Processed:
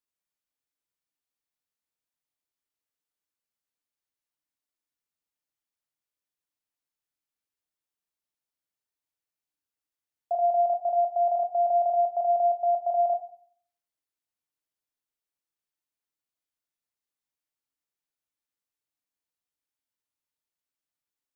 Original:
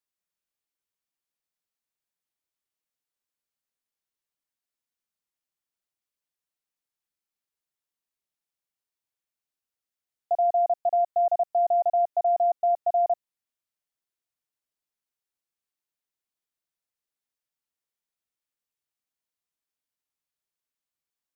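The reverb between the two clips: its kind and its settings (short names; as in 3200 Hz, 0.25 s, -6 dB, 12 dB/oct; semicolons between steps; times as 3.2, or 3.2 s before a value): FDN reverb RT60 0.56 s, low-frequency decay 1.3×, high-frequency decay 0.4×, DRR 7 dB; gain -3 dB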